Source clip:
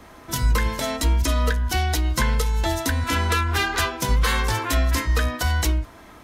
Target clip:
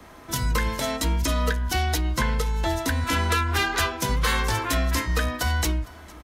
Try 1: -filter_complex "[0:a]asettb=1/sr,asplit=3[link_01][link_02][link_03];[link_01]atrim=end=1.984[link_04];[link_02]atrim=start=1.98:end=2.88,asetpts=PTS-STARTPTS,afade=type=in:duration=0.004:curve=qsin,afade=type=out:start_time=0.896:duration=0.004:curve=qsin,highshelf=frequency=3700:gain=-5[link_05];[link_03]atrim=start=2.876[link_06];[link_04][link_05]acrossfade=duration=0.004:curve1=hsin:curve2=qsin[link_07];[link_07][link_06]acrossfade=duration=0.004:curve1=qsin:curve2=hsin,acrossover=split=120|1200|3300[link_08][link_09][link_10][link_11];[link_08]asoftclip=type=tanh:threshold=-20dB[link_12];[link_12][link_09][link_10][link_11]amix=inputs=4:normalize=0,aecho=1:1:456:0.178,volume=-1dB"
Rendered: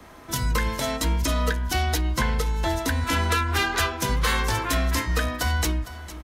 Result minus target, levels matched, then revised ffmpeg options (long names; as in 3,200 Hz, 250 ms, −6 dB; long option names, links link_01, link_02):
echo-to-direct +6.5 dB
-filter_complex "[0:a]asettb=1/sr,asplit=3[link_01][link_02][link_03];[link_01]atrim=end=1.984[link_04];[link_02]atrim=start=1.98:end=2.88,asetpts=PTS-STARTPTS,afade=type=in:duration=0.004:curve=qsin,afade=type=out:start_time=0.896:duration=0.004:curve=qsin,highshelf=frequency=3700:gain=-5[link_05];[link_03]atrim=start=2.876[link_06];[link_04][link_05]acrossfade=duration=0.004:curve1=hsin:curve2=qsin[link_07];[link_07][link_06]acrossfade=duration=0.004:curve1=qsin:curve2=hsin,acrossover=split=120|1200|3300[link_08][link_09][link_10][link_11];[link_08]asoftclip=type=tanh:threshold=-20dB[link_12];[link_12][link_09][link_10][link_11]amix=inputs=4:normalize=0,aecho=1:1:456:0.0668,volume=-1dB"